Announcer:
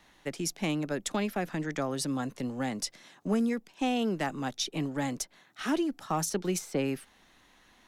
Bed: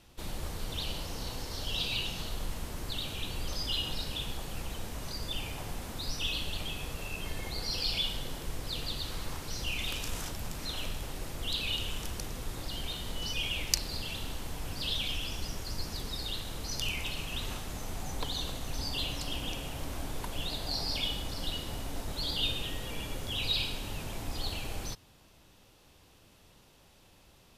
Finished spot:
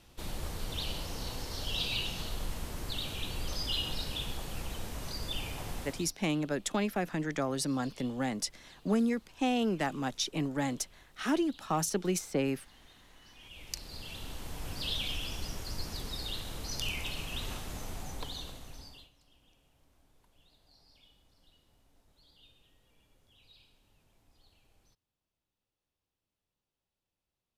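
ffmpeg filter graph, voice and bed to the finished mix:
-filter_complex "[0:a]adelay=5600,volume=-0.5dB[a];[1:a]volume=21.5dB,afade=t=out:st=5.8:d=0.33:silence=0.0707946,afade=t=in:st=13.39:d=1.3:silence=0.0794328,afade=t=out:st=17.78:d=1.32:silence=0.0354813[b];[a][b]amix=inputs=2:normalize=0"

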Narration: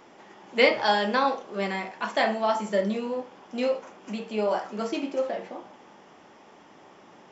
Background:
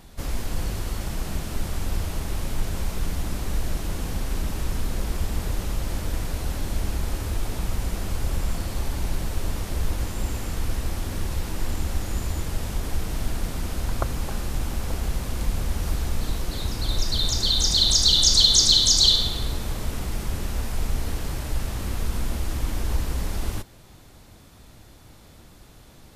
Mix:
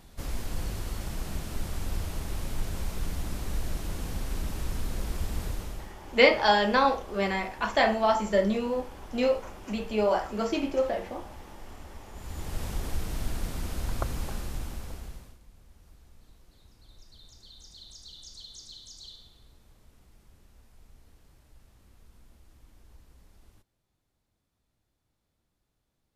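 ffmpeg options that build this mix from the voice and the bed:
-filter_complex "[0:a]adelay=5600,volume=1dB[a];[1:a]volume=9.5dB,afade=t=out:st=5.45:d=0.48:silence=0.188365,afade=t=in:st=12.13:d=0.5:silence=0.177828,afade=t=out:st=14.21:d=1.18:silence=0.0562341[b];[a][b]amix=inputs=2:normalize=0"

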